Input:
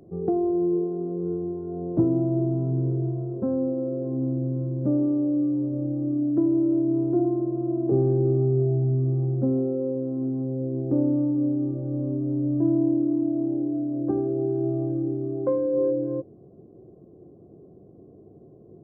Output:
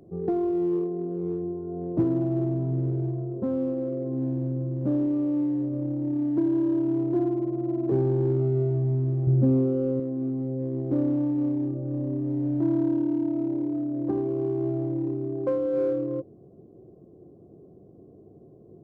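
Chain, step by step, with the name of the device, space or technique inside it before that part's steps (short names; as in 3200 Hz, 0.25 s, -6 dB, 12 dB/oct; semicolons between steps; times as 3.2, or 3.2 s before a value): parallel distortion (in parallel at -10.5 dB: hard clip -24 dBFS, distortion -10 dB); 9.27–10 on the sum: low shelf 210 Hz +10 dB; gain -3.5 dB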